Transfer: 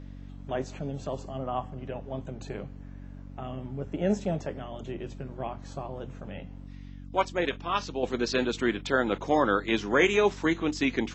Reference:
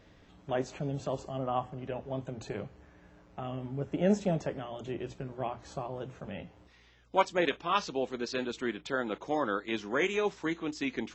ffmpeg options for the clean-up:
-af "bandreject=f=47:t=h:w=4,bandreject=f=94:t=h:w=4,bandreject=f=141:t=h:w=4,bandreject=f=188:t=h:w=4,bandreject=f=235:t=h:w=4,bandreject=f=282:t=h:w=4,asetnsamples=n=441:p=0,asendcmd='8.03 volume volume -7dB',volume=1"

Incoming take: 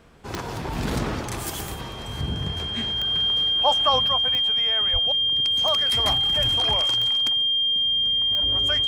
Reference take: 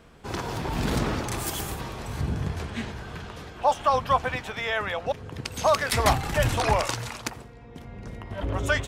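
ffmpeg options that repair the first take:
-filter_complex "[0:a]adeclick=t=4,bandreject=f=3200:w=30,asplit=3[s0][s1][s2];[s0]afade=t=out:st=4.92:d=0.02[s3];[s1]highpass=f=140:w=0.5412,highpass=f=140:w=1.3066,afade=t=in:st=4.92:d=0.02,afade=t=out:st=5.04:d=0.02[s4];[s2]afade=t=in:st=5.04:d=0.02[s5];[s3][s4][s5]amix=inputs=3:normalize=0,asetnsamples=n=441:p=0,asendcmd='4.08 volume volume 6.5dB',volume=1"

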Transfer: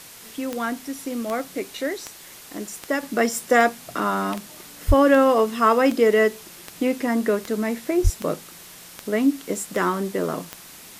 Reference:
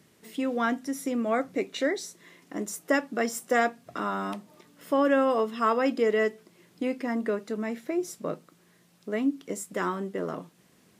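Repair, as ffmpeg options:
-filter_complex "[0:a]adeclick=t=4,asplit=3[s0][s1][s2];[s0]afade=t=out:st=4.87:d=0.02[s3];[s1]highpass=f=140:w=0.5412,highpass=f=140:w=1.3066,afade=t=in:st=4.87:d=0.02,afade=t=out:st=4.99:d=0.02[s4];[s2]afade=t=in:st=4.99:d=0.02[s5];[s3][s4][s5]amix=inputs=3:normalize=0,asplit=3[s6][s7][s8];[s6]afade=t=out:st=8.03:d=0.02[s9];[s7]highpass=f=140:w=0.5412,highpass=f=140:w=1.3066,afade=t=in:st=8.03:d=0.02,afade=t=out:st=8.15:d=0.02[s10];[s8]afade=t=in:st=8.15:d=0.02[s11];[s9][s10][s11]amix=inputs=3:normalize=0,afwtdn=0.0079,asetnsamples=n=441:p=0,asendcmd='3.03 volume volume -7dB',volume=1"

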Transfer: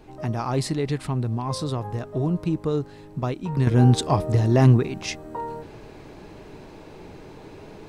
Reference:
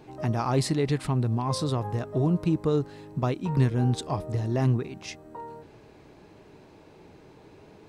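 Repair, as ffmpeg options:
-af "agate=range=0.0891:threshold=0.0178,asetnsamples=n=441:p=0,asendcmd='3.67 volume volume -8.5dB',volume=1"

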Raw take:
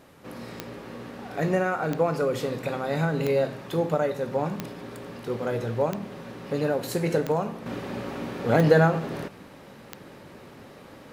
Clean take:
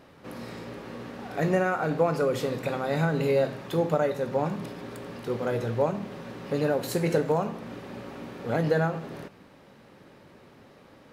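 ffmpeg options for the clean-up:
-af "adeclick=t=4,agate=range=0.0891:threshold=0.0112,asetnsamples=n=441:p=0,asendcmd='7.66 volume volume -6.5dB',volume=1"

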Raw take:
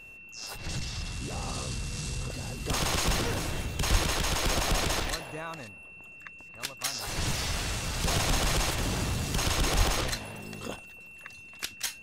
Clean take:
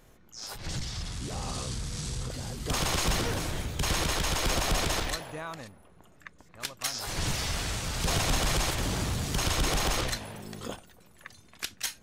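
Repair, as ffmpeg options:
-filter_complex "[0:a]bandreject=f=2700:w=30,asplit=3[s0][s1][s2];[s0]afade=t=out:st=3.91:d=0.02[s3];[s1]highpass=f=140:w=0.5412,highpass=f=140:w=1.3066,afade=t=in:st=3.91:d=0.02,afade=t=out:st=4.03:d=0.02[s4];[s2]afade=t=in:st=4.03:d=0.02[s5];[s3][s4][s5]amix=inputs=3:normalize=0,asplit=3[s6][s7][s8];[s6]afade=t=out:st=9.77:d=0.02[s9];[s7]highpass=f=140:w=0.5412,highpass=f=140:w=1.3066,afade=t=in:st=9.77:d=0.02,afade=t=out:st=9.89:d=0.02[s10];[s8]afade=t=in:st=9.89:d=0.02[s11];[s9][s10][s11]amix=inputs=3:normalize=0"

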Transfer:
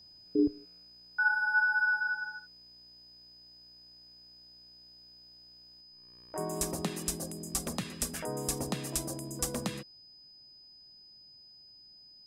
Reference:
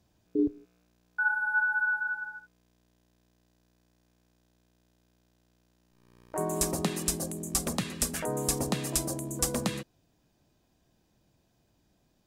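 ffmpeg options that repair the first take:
-af "bandreject=f=5000:w=30,asetnsamples=n=441:p=0,asendcmd='5.81 volume volume 4.5dB',volume=1"

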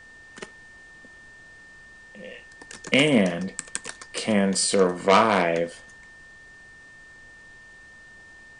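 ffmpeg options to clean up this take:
-af "bandreject=f=1800:w=30,agate=range=0.0891:threshold=0.01"

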